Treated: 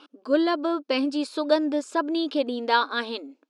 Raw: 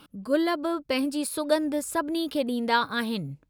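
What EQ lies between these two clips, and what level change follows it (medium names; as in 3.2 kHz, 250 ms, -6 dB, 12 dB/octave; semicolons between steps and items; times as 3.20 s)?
brick-wall FIR high-pass 240 Hz; low-pass 6.2 kHz 24 dB/octave; peaking EQ 2 kHz -7 dB 0.24 oct; +2.5 dB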